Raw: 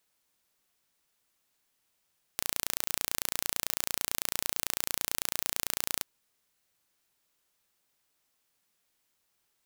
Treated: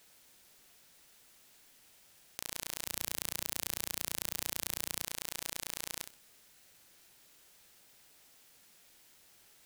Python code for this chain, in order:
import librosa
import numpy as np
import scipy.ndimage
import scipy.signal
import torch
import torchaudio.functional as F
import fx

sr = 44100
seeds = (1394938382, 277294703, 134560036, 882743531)

y = fx.peak_eq(x, sr, hz=110.0, db=6.0, octaves=2.2, at=(2.84, 5.03))
y = fx.over_compress(y, sr, threshold_db=-43.0, ratio=-1.0)
y = fx.peak_eq(y, sr, hz=1100.0, db=-4.5, octaves=0.45)
y = fx.echo_feedback(y, sr, ms=63, feedback_pct=22, wet_db=-11.0)
y = fx.doppler_dist(y, sr, depth_ms=0.33)
y = y * librosa.db_to_amplitude(5.0)